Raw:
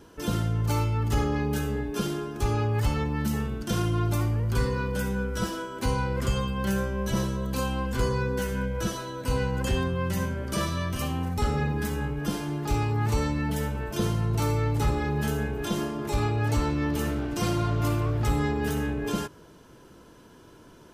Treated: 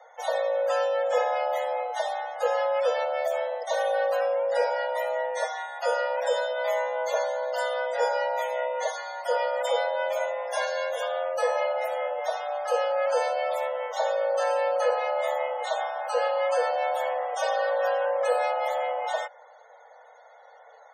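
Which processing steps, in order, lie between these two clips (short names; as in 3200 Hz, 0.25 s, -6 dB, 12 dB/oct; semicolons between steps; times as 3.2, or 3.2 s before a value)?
frequency shift +440 Hz; loudest bins only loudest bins 64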